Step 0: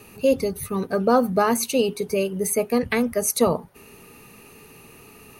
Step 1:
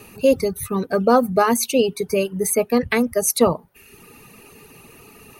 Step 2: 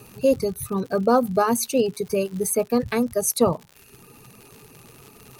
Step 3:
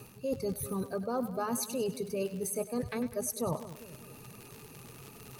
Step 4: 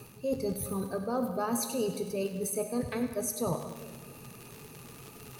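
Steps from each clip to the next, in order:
reverb reduction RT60 0.75 s; level +3.5 dB
thirty-one-band graphic EQ 125 Hz +9 dB, 2,000 Hz −10 dB, 3,150 Hz −7 dB; surface crackle 100 per second −30 dBFS; level −3 dB
parametric band 130 Hz +2.5 dB; reversed playback; downward compressor, threshold −28 dBFS, peak gain reduction 14.5 dB; reversed playback; echo with a time of its own for lows and highs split 570 Hz, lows 199 ms, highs 99 ms, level −12 dB; level −3 dB
convolution reverb RT60 1.4 s, pre-delay 10 ms, DRR 7 dB; level +1 dB

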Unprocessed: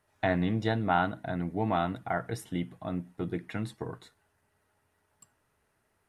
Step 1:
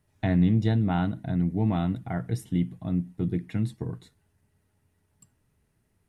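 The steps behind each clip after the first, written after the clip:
drawn EQ curve 180 Hz 0 dB, 620 Hz −14 dB, 940 Hz −15 dB, 1,400 Hz −17 dB, 2,100 Hz −12 dB, 7,900 Hz −9 dB
level +9 dB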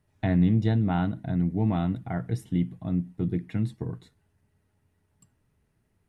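high-shelf EQ 4,800 Hz −6 dB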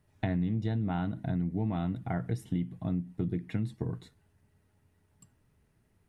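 downward compressor 4 to 1, threshold −30 dBFS, peak gain reduction 11.5 dB
level +1.5 dB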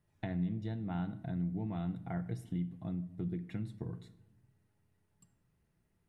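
rectangular room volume 3,000 cubic metres, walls furnished, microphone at 0.81 metres
level −7.5 dB

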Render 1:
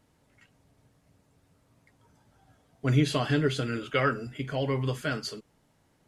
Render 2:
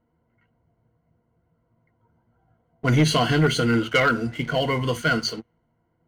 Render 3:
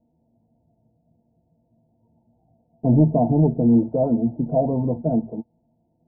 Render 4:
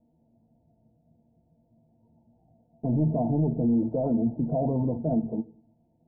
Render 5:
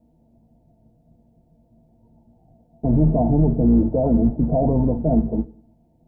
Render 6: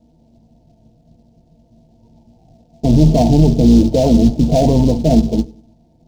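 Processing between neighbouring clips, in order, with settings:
low-pass that shuts in the quiet parts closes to 1,300 Hz, open at −26 dBFS; EQ curve with evenly spaced ripples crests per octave 1.9, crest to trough 13 dB; leveller curve on the samples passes 2
Chebyshev low-pass with heavy ripple 910 Hz, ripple 9 dB; level +7.5 dB
brickwall limiter −18 dBFS, peak gain reduction 11 dB; high-frequency loss of the air 360 metres; on a send at −17 dB: convolution reverb RT60 0.50 s, pre-delay 3 ms
sub-octave generator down 2 octaves, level −5 dB; level +7 dB
bad sample-rate conversion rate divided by 2×, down filtered, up hold; short delay modulated by noise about 4,300 Hz, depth 0.031 ms; level +6.5 dB

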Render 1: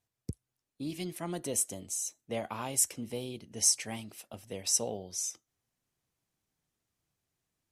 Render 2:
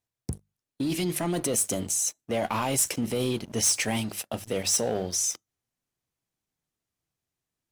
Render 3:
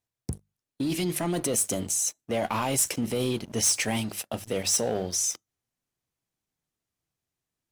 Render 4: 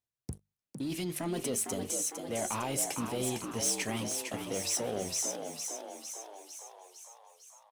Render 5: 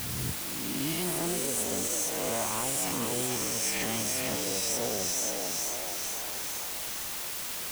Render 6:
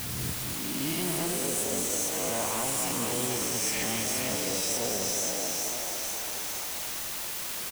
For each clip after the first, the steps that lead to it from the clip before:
in parallel at −1.5 dB: compressor whose output falls as the input rises −39 dBFS, ratio −0.5; on the sum: mains-hum notches 50/100/150/200 Hz; leveller curve on the samples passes 3; level −5 dB
no processing that can be heard
echo with shifted repeats 455 ms, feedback 61%, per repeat +68 Hz, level −6 dB; level −7.5 dB
peak hold with a rise ahead of every peak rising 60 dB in 1.59 s; brickwall limiter −22.5 dBFS, peak gain reduction 7 dB; bit-depth reduction 6 bits, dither triangular
single-tap delay 214 ms −6 dB

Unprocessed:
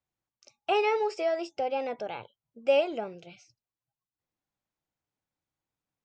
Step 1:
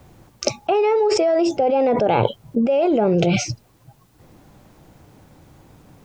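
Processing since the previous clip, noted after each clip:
tilt shelving filter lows +7.5 dB, about 930 Hz
envelope flattener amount 100%
level −1 dB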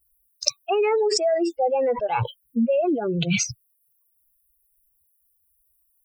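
spectral dynamics exaggerated over time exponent 3
high-shelf EQ 2,200 Hz +8.5 dB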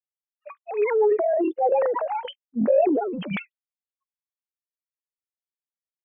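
three sine waves on the formant tracks
transient designer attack −5 dB, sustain +7 dB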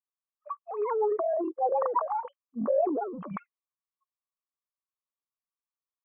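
transistor ladder low-pass 1,200 Hz, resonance 80%
level +3.5 dB

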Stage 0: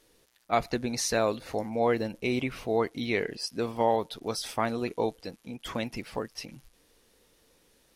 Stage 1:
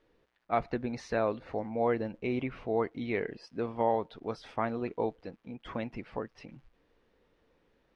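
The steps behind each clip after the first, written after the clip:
low-pass filter 2,100 Hz 12 dB per octave
level −3 dB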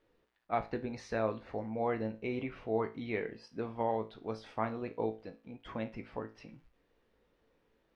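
tuned comb filter 55 Hz, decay 0.31 s, harmonics all, mix 70%
level +1.5 dB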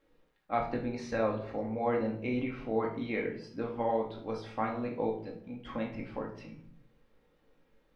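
rectangular room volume 760 cubic metres, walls furnished, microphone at 2.2 metres

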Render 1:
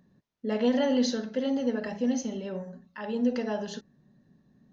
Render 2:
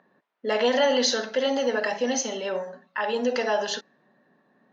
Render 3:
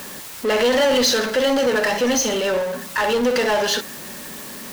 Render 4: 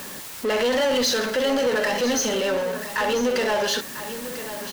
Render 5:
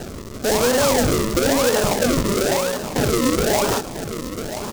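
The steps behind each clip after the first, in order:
low-pass that shuts in the quiet parts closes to 1,900 Hz, open at −26.5 dBFS; high-pass filter 630 Hz 12 dB per octave; in parallel at +2 dB: brickwall limiter −30.5 dBFS, peak gain reduction 10.5 dB; on the sum: level +6.5 dB
parametric band 710 Hz −10 dB 0.22 octaves; in parallel at −4 dB: bit-depth reduction 8 bits, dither triangular; on the sum: power curve on the samples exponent 0.5; level −3.5 dB
in parallel at 0 dB: brickwall limiter −19 dBFS, peak gain reduction 9 dB; on the sum: single-tap delay 994 ms −12 dB; level −7.5 dB
sample-and-hold swept by an LFO 38×, swing 100% 1 Hz; short delay modulated by noise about 5,200 Hz, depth 0.072 ms; level +4 dB

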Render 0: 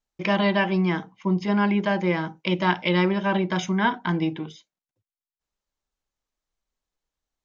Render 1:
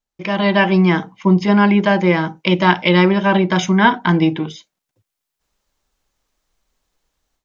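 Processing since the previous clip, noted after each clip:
automatic gain control gain up to 15 dB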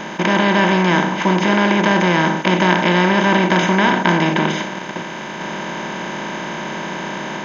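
compressor on every frequency bin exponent 0.2
level −8 dB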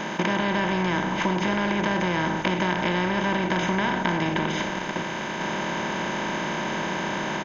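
downward compressor, threshold −19 dBFS, peak gain reduction 9.5 dB
echo with shifted repeats 103 ms, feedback 58%, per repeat −57 Hz, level −17.5 dB
level −2 dB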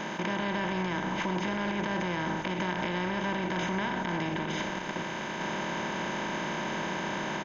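brickwall limiter −16.5 dBFS, peak gain reduction 7.5 dB
level −5 dB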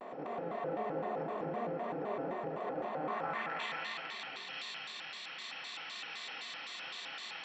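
band-pass filter sweep 540 Hz → 3,600 Hz, 0:02.81–0:03.78
convolution reverb RT60 3.4 s, pre-delay 35 ms, DRR −2.5 dB
pitch modulation by a square or saw wave square 3.9 Hz, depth 250 cents
level −3 dB

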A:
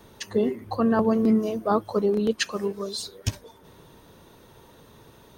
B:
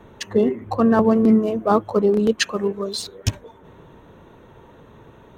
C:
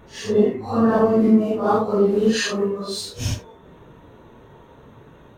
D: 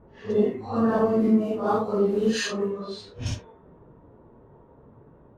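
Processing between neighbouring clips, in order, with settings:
adaptive Wiener filter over 9 samples; level +5.5 dB
random phases in long frames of 200 ms
low-pass that shuts in the quiet parts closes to 810 Hz, open at −17 dBFS; level −5 dB

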